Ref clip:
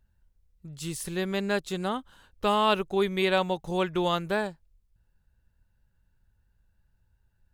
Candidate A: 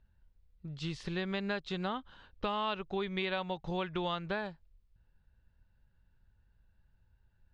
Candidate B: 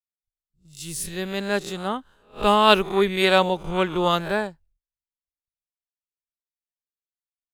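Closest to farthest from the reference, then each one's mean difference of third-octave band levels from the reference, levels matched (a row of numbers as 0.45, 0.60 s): B, A; 4.0, 5.5 dB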